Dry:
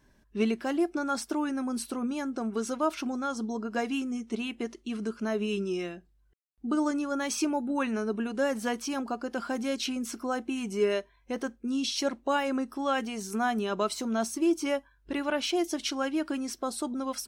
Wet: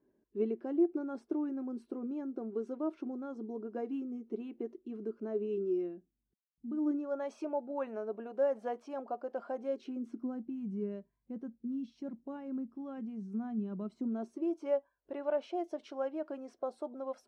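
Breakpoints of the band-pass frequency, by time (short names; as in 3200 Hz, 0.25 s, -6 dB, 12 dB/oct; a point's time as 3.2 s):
band-pass, Q 2.7
5.72 s 370 Hz
6.68 s 150 Hz
7.11 s 600 Hz
9.56 s 600 Hz
10.46 s 180 Hz
13.82 s 180 Hz
14.54 s 590 Hz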